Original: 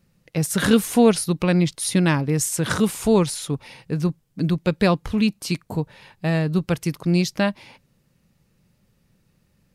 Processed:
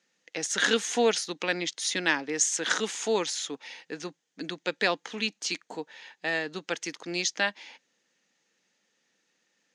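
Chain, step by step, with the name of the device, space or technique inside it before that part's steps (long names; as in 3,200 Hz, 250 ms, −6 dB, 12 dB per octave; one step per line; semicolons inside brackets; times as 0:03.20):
phone speaker on a table (loudspeaker in its box 330–7,000 Hz, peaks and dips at 380 Hz −7 dB, 590 Hz −7 dB, 1,100 Hz −6 dB, 1,800 Hz +6 dB, 3,300 Hz +5 dB, 6,500 Hz +10 dB)
level −2.5 dB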